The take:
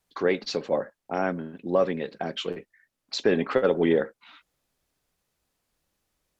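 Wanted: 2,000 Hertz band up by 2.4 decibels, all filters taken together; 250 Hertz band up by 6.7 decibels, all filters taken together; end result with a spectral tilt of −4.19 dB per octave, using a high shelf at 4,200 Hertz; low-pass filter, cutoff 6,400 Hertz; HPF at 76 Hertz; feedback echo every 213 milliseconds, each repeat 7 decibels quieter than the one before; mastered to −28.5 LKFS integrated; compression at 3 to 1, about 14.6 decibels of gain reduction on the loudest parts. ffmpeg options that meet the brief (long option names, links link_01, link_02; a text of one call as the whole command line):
ffmpeg -i in.wav -af "highpass=76,lowpass=6400,equalizer=frequency=250:width_type=o:gain=8.5,equalizer=frequency=2000:width_type=o:gain=4.5,highshelf=frequency=4200:gain=-8.5,acompressor=threshold=-33dB:ratio=3,aecho=1:1:213|426|639|852|1065:0.447|0.201|0.0905|0.0407|0.0183,volume=6dB" out.wav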